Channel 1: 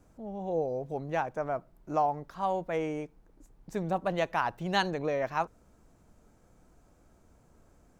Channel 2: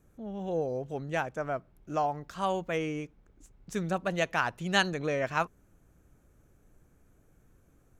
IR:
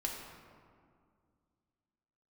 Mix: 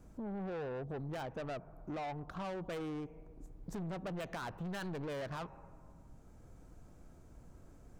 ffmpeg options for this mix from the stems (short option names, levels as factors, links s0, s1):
-filter_complex "[0:a]acrossover=split=200[s0][s1];[s1]acompressor=threshold=0.00708:ratio=1.5[s2];[s0][s2]amix=inputs=2:normalize=0,volume=0.841,asplit=2[s3][s4];[s4]volume=0.141[s5];[1:a]alimiter=limit=0.0708:level=0:latency=1:release=33,adynamicsmooth=sensitivity=7:basefreq=670,volume=-1,volume=1.12,asplit=2[s6][s7];[s7]apad=whole_len=352628[s8];[s3][s8]sidechaincompress=threshold=0.0126:ratio=8:attack=5.5:release=1190[s9];[2:a]atrim=start_sample=2205[s10];[s5][s10]afir=irnorm=-1:irlink=0[s11];[s9][s6][s11]amix=inputs=3:normalize=0,lowshelf=f=210:g=3.5,asoftclip=type=tanh:threshold=0.02,acompressor=threshold=0.0112:ratio=6"